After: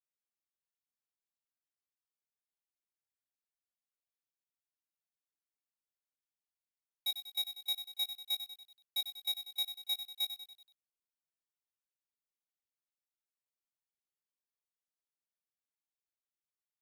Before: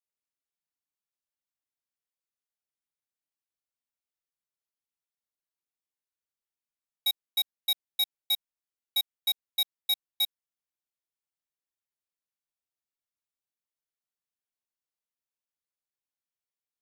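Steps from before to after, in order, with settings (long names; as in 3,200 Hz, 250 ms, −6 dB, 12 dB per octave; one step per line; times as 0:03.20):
double-tracking delay 19 ms −8 dB
feedback echo at a low word length 95 ms, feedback 55%, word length 9 bits, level −9.5 dB
level −9 dB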